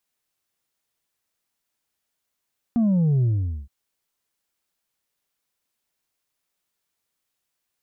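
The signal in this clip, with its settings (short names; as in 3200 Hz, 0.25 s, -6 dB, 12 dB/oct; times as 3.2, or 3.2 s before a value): sub drop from 240 Hz, over 0.92 s, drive 3 dB, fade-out 0.45 s, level -17 dB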